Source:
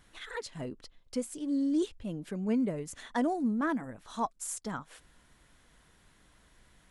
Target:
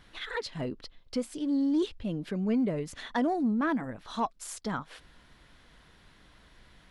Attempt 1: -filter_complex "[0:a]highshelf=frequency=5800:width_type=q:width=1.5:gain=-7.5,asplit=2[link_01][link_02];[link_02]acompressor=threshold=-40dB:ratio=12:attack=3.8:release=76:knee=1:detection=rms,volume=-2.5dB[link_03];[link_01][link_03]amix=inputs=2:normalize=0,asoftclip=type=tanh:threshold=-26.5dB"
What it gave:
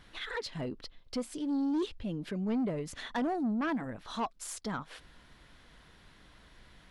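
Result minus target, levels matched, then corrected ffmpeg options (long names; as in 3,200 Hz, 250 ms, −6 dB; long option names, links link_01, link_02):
soft clipping: distortion +13 dB; downward compressor: peak gain reduction +7.5 dB
-filter_complex "[0:a]highshelf=frequency=5800:width_type=q:width=1.5:gain=-7.5,asplit=2[link_01][link_02];[link_02]acompressor=threshold=-32dB:ratio=12:attack=3.8:release=76:knee=1:detection=rms,volume=-2.5dB[link_03];[link_01][link_03]amix=inputs=2:normalize=0,asoftclip=type=tanh:threshold=-17dB"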